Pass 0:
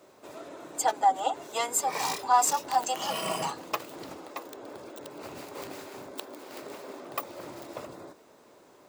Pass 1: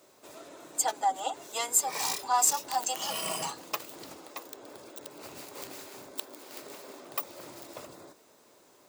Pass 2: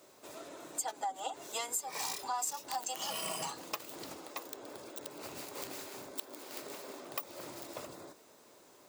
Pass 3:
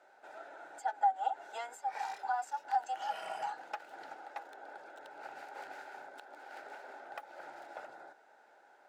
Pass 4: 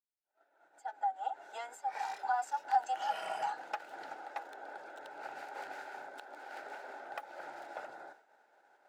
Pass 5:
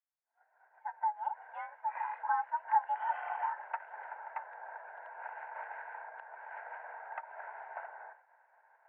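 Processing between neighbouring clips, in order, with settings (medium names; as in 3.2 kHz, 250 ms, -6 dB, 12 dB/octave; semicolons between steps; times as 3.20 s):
treble shelf 3.3 kHz +10.5 dB; trim -5.5 dB
compression 4:1, threshold -35 dBFS, peak gain reduction 13.5 dB
companded quantiser 6-bit; two resonant band-passes 1.1 kHz, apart 0.85 oct; trim +9 dB
fade-in on the opening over 2.54 s; expander -56 dBFS; trim +2.5 dB
mistuned SSB +80 Hz 500–2100 Hz; trim +1 dB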